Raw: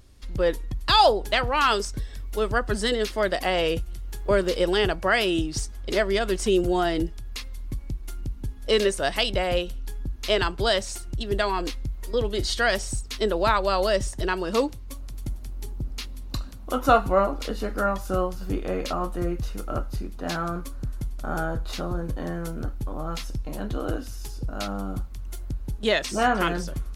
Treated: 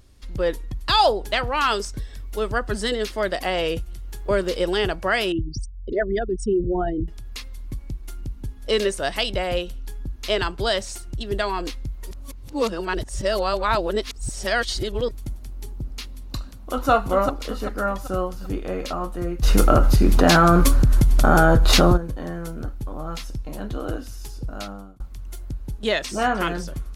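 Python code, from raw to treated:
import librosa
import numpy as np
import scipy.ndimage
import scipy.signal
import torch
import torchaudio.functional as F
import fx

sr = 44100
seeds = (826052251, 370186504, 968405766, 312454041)

y = fx.envelope_sharpen(x, sr, power=3.0, at=(5.32, 7.08))
y = fx.echo_throw(y, sr, start_s=16.38, length_s=0.52, ms=390, feedback_pct=45, wet_db=-4.0)
y = fx.env_flatten(y, sr, amount_pct=100, at=(19.42, 21.96), fade=0.02)
y = fx.edit(y, sr, fx.reverse_span(start_s=12.11, length_s=3.0),
    fx.fade_out_span(start_s=24.51, length_s=0.49), tone=tone)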